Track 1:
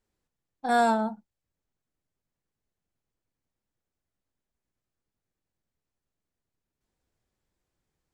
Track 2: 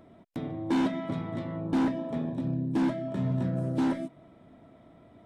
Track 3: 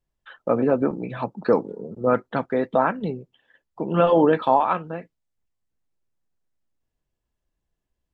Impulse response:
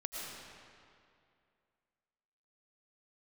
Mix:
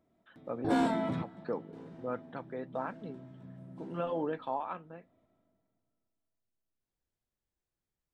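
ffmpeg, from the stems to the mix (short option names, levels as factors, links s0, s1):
-filter_complex "[0:a]volume=0.251,asplit=3[s0][s1][s2];[s1]volume=0.126[s3];[1:a]acontrast=52,alimiter=limit=0.0841:level=0:latency=1:release=90,volume=0.596,asplit=2[s4][s5];[s5]volume=0.0944[s6];[2:a]volume=0.141[s7];[s2]apad=whole_len=231709[s8];[s4][s8]sidechaingate=range=0.0224:threshold=0.00158:ratio=16:detection=peak[s9];[3:a]atrim=start_sample=2205[s10];[s3][s6]amix=inputs=2:normalize=0[s11];[s11][s10]afir=irnorm=-1:irlink=0[s12];[s0][s9][s7][s12]amix=inputs=4:normalize=0"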